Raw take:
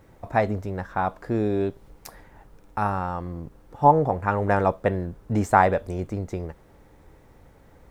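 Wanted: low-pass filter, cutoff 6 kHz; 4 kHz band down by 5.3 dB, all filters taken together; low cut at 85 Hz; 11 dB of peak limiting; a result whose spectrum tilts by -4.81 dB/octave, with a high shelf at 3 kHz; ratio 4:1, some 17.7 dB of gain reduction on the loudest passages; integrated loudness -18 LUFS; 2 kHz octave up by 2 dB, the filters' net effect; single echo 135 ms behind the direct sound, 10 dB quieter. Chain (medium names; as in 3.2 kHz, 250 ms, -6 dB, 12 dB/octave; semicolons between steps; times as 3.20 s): high-pass 85 Hz; low-pass 6 kHz; peaking EQ 2 kHz +5 dB; treble shelf 3 kHz -4.5 dB; peaking EQ 4 kHz -4.5 dB; compression 4:1, threshold -32 dBFS; peak limiter -26 dBFS; delay 135 ms -10 dB; trim +21 dB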